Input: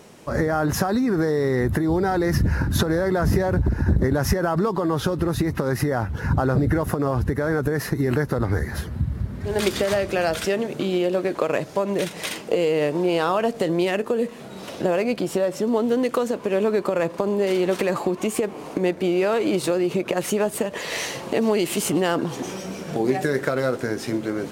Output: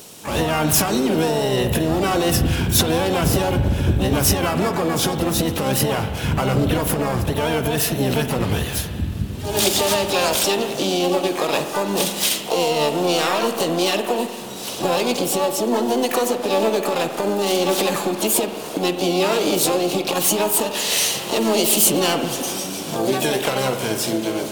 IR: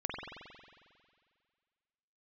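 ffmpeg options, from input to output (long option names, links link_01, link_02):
-filter_complex "[0:a]acontrast=80,asplit=3[link_01][link_02][link_03];[link_02]asetrate=66075,aresample=44100,atempo=0.66742,volume=-5dB[link_04];[link_03]asetrate=88200,aresample=44100,atempo=0.5,volume=-10dB[link_05];[link_01][link_04][link_05]amix=inputs=3:normalize=0,aexciter=amount=3.9:drive=6.8:freq=2800,asplit=2[link_06][link_07];[1:a]atrim=start_sample=2205,lowpass=4300[link_08];[link_07][link_08]afir=irnorm=-1:irlink=0,volume=-7dB[link_09];[link_06][link_09]amix=inputs=2:normalize=0,volume=-10dB"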